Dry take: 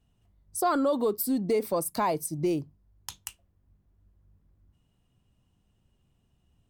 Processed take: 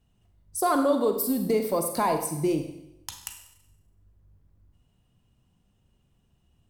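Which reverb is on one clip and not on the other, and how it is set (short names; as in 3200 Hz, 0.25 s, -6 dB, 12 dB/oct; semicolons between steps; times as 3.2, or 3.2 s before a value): Schroeder reverb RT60 0.83 s, combs from 32 ms, DRR 5.5 dB; gain +1.5 dB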